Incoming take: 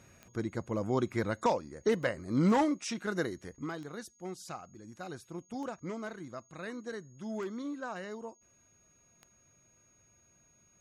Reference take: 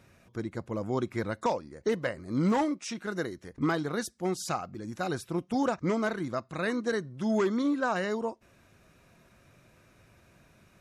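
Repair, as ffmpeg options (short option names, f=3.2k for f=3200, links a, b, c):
-af "adeclick=t=4,bandreject=f=6.6k:w=30,asetnsamples=n=441:p=0,asendcmd='3.55 volume volume 11dB',volume=0dB"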